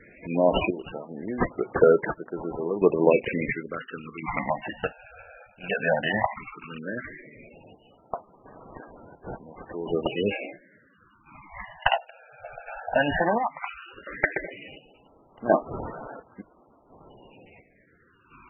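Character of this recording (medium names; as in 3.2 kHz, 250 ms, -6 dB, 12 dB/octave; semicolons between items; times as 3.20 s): chopped level 0.71 Hz, depth 65%, duty 50%; aliases and images of a low sample rate 4.9 kHz, jitter 0%; phasing stages 12, 0.14 Hz, lowest notch 330–2800 Hz; MP3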